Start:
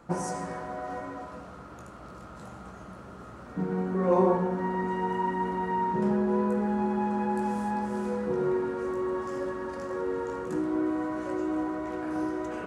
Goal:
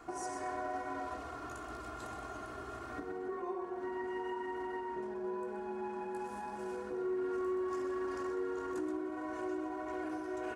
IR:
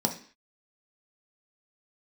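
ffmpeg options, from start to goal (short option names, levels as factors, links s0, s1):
-filter_complex "[0:a]acompressor=threshold=0.0141:ratio=10,aecho=1:1:2.8:0.98,atempo=1.2,lowshelf=f=350:g=-6,asplit=2[s0][s1];[s1]aecho=0:1:127:0.355[s2];[s0][s2]amix=inputs=2:normalize=0"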